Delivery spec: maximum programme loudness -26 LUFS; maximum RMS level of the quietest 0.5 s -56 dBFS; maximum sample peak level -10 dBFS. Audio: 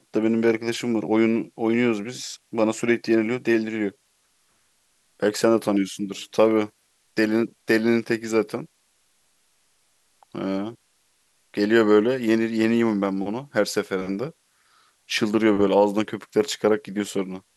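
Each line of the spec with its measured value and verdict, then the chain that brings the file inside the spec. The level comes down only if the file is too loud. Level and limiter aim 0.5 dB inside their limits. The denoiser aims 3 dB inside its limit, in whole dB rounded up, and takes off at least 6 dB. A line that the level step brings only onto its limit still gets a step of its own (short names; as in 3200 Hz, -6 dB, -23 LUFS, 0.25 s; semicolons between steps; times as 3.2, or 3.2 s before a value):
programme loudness -23.0 LUFS: fail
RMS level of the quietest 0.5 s -66 dBFS: OK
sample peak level -5.0 dBFS: fail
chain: gain -3.5 dB; limiter -10.5 dBFS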